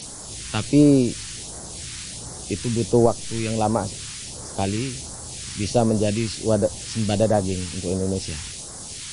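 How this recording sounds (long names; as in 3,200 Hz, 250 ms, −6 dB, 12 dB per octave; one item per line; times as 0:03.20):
a quantiser's noise floor 6 bits, dither triangular
phaser sweep stages 2, 1.4 Hz, lowest notch 600–2,600 Hz
MP3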